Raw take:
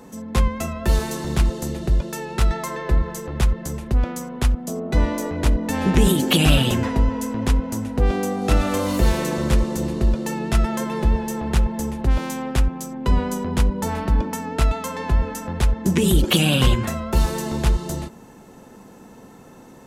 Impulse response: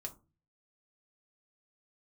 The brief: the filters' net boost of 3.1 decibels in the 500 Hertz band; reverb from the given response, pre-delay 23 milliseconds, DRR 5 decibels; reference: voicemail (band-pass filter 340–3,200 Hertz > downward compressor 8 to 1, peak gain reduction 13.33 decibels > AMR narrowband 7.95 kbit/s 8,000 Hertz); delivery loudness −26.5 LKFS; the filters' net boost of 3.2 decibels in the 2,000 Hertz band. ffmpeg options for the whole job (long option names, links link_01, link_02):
-filter_complex "[0:a]equalizer=frequency=500:width_type=o:gain=5,equalizer=frequency=2000:width_type=o:gain=5,asplit=2[link_01][link_02];[1:a]atrim=start_sample=2205,adelay=23[link_03];[link_02][link_03]afir=irnorm=-1:irlink=0,volume=-2.5dB[link_04];[link_01][link_04]amix=inputs=2:normalize=0,highpass=340,lowpass=3200,acompressor=threshold=-26dB:ratio=8,volume=5dB" -ar 8000 -c:a libopencore_amrnb -b:a 7950